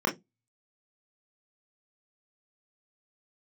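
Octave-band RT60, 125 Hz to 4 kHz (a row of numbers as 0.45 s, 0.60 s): 0.30 s, 0.25 s, 0.20 s, 0.15 s, 0.10 s, 0.15 s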